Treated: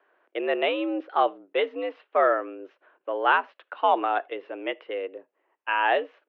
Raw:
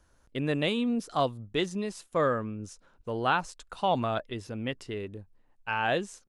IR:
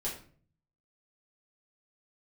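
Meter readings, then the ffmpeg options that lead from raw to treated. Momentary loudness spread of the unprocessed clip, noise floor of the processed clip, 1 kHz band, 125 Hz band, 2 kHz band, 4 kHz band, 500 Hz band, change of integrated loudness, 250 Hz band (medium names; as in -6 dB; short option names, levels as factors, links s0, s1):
14 LU, -79 dBFS, +6.5 dB, under -30 dB, +6.0 dB, 0.0 dB, +5.0 dB, +4.5 dB, -2.5 dB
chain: -filter_complex "[0:a]asplit=2[s0][s1];[1:a]atrim=start_sample=2205,atrim=end_sample=4410[s2];[s1][s2]afir=irnorm=-1:irlink=0,volume=0.0841[s3];[s0][s3]amix=inputs=2:normalize=0,highpass=f=280:t=q:w=0.5412,highpass=f=280:t=q:w=1.307,lowpass=f=2800:t=q:w=0.5176,lowpass=f=2800:t=q:w=0.7071,lowpass=f=2800:t=q:w=1.932,afreqshift=81,volume=1.78"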